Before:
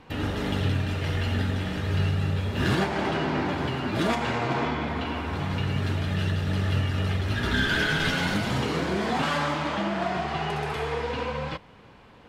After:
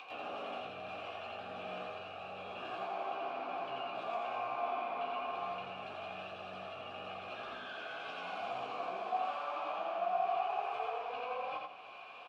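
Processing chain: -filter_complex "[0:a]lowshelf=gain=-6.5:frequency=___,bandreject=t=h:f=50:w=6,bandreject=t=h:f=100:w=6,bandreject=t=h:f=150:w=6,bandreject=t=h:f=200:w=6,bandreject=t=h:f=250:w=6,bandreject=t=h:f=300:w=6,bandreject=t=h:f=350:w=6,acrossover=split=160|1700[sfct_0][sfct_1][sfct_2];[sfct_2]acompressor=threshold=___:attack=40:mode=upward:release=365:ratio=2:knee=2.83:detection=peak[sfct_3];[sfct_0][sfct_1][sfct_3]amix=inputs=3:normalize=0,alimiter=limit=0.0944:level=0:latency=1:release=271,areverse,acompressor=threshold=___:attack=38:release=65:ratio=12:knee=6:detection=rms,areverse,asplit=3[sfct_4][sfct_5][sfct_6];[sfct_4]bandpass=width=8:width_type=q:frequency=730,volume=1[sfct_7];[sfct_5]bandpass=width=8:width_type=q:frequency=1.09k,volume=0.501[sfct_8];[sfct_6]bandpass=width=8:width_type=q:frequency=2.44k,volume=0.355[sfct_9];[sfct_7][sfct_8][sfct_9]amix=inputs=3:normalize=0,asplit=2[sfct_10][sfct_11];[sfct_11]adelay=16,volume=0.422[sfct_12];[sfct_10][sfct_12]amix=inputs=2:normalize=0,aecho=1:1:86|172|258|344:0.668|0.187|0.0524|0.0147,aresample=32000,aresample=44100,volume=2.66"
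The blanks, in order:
290, 0.01, 0.0112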